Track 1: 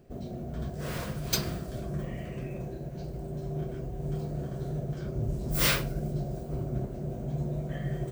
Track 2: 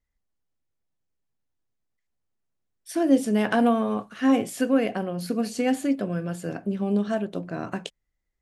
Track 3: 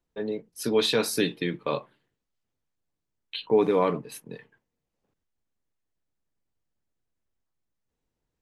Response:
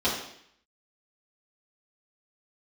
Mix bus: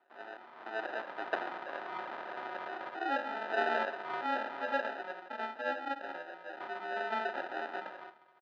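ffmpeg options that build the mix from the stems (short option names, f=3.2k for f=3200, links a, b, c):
-filter_complex "[0:a]dynaudnorm=f=230:g=11:m=13dB,volume=-10.5dB,asplit=3[a][b][c];[a]atrim=end=4.86,asetpts=PTS-STARTPTS,afade=t=out:st=4.856:d=0.004:c=hsin[d];[b]atrim=start=4.86:end=6.6,asetpts=PTS-STARTPTS,volume=0[e];[c]atrim=start=6.6,asetpts=PTS-STARTPTS,afade=t=in:d=0.004:c=hsin[f];[d][e][f]concat=n=3:v=0:a=1,asplit=2[g][h];[h]volume=-20dB[i];[1:a]volume=-14dB,afade=t=in:st=6.5:d=0.74:silence=0.421697,asplit=3[j][k][l];[k]volume=-4.5dB[m];[2:a]aeval=exprs='sgn(val(0))*max(abs(val(0))-0.0112,0)':c=same,volume=-12dB[n];[l]apad=whole_len=358021[o];[g][o]sidechaincompress=threshold=-56dB:ratio=8:attack=32:release=195[p];[3:a]atrim=start_sample=2205[q];[m][q]afir=irnorm=-1:irlink=0[r];[i]aecho=0:1:355|710|1065|1420|1775|2130|2485:1|0.5|0.25|0.125|0.0625|0.0312|0.0156[s];[p][j][n][r][s]amix=inputs=5:normalize=0,acrusher=samples=40:mix=1:aa=0.000001,highpass=f=390:w=0.5412,highpass=f=390:w=1.3066,equalizer=f=450:t=q:w=4:g=-10,equalizer=f=760:t=q:w=4:g=4,equalizer=f=1.1k:t=q:w=4:g=10,equalizer=f=1.6k:t=q:w=4:g=4,equalizer=f=2.7k:t=q:w=4:g=-5,lowpass=f=3.2k:w=0.5412,lowpass=f=3.2k:w=1.3066"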